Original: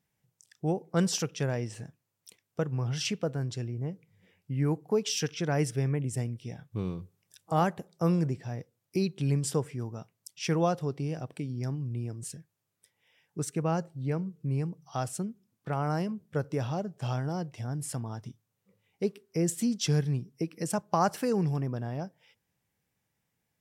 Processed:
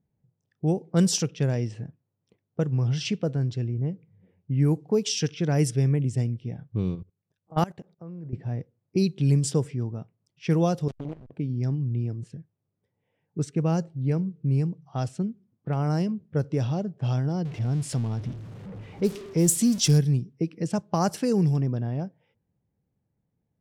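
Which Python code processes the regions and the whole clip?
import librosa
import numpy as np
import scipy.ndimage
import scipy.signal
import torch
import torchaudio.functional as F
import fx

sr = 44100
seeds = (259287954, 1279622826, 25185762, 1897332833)

y = fx.chain(x, sr, fx.highpass(hz=63.0, slope=12),
    fx.peak_eq(hz=1700.0, db=4.0, octaves=3.0),
    fx.level_steps(step_db=22), at=(6.95, 8.33))
y = fx.chain(y, sr, fx.delta_hold(step_db=-34.5),
    fx.level_steps(step_db=17),
    fx.transformer_sat(knee_hz=580.0), at=(10.88, 11.3))
y = fx.chain(y, sr, fx.zero_step(step_db=-38.0),
    fx.high_shelf(hz=8300.0, db=7.5), at=(17.45, 19.98))
y = fx.env_lowpass(y, sr, base_hz=920.0, full_db=-23.0)
y = fx.peak_eq(y, sr, hz=1200.0, db=-10.0, octaves=2.6)
y = y * librosa.db_to_amplitude(7.5)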